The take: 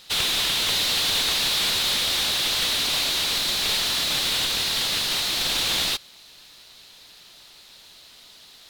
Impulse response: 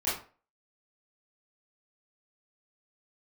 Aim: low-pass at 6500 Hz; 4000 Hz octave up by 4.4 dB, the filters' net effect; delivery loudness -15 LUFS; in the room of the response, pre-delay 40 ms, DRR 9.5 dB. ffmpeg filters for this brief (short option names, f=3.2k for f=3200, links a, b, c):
-filter_complex "[0:a]lowpass=6.5k,equalizer=f=4k:t=o:g=5.5,asplit=2[a][b];[1:a]atrim=start_sample=2205,adelay=40[c];[b][c]afir=irnorm=-1:irlink=0,volume=-18dB[d];[a][d]amix=inputs=2:normalize=0,volume=2dB"